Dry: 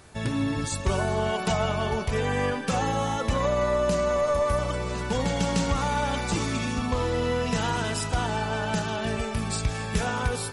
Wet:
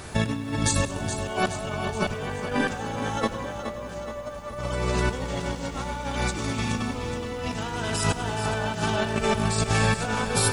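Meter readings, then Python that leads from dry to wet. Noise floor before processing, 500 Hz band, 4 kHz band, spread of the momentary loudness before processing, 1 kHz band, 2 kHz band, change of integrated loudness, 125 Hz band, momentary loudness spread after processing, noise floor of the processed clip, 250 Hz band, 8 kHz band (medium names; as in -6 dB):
-32 dBFS, -3.0 dB, +1.0 dB, 4 LU, -1.0 dB, +1.5 dB, -0.5 dB, 0.0 dB, 9 LU, -36 dBFS, 0.0 dB, +3.5 dB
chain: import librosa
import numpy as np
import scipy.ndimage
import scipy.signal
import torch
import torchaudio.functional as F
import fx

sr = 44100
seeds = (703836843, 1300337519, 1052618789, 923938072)

y = fx.over_compress(x, sr, threshold_db=-32.0, ratio=-0.5)
y = fx.echo_feedback(y, sr, ms=422, feedback_pct=54, wet_db=-9.0)
y = fx.echo_crushed(y, sr, ms=100, feedback_pct=55, bits=9, wet_db=-14)
y = F.gain(torch.from_numpy(y), 5.0).numpy()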